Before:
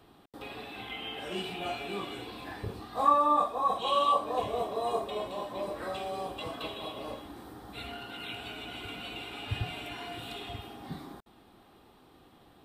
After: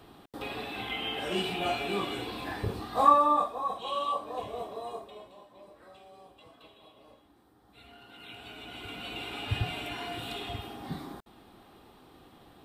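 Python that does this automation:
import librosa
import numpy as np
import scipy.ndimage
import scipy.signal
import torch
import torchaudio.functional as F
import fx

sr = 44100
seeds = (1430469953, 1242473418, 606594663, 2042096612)

y = fx.gain(x, sr, db=fx.line((2.98, 5.0), (3.75, -5.5), (4.72, -5.5), (5.47, -17.0), (7.53, -17.0), (8.41, -5.5), (9.28, 3.0)))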